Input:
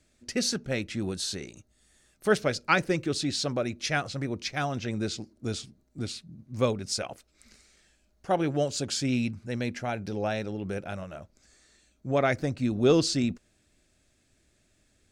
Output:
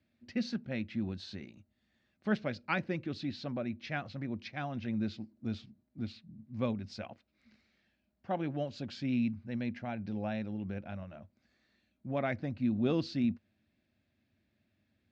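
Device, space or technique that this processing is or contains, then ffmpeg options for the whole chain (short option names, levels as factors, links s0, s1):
guitar cabinet: -filter_complex "[0:a]highpass=90,equalizer=f=94:t=q:w=4:g=8,equalizer=f=220:t=q:w=4:g=9,equalizer=f=430:t=q:w=4:g=-7,equalizer=f=1300:t=q:w=4:g=-4,equalizer=f=3300:t=q:w=4:g=-3,lowpass=f=3900:w=0.5412,lowpass=f=3900:w=1.3066,asettb=1/sr,asplit=3[s0][s1][s2];[s0]atrim=end=3.294[s3];[s1]atrim=start=3.29:end=3.96,asetpts=PTS-STARTPTS,afade=t=in:d=0.004:c=qsin,afade=t=out:st=0.666:d=0.004:c=qsin,highshelf=f=5400:g=-5.5[s4];[s2]atrim=start=3.956[s5];[s3][s4]acrossfade=d=0.004:c1=hsin:c2=qsin[s6];[s6][s5]acrossfade=d=0.004:c1=qsin:c2=hsin,volume=0.398"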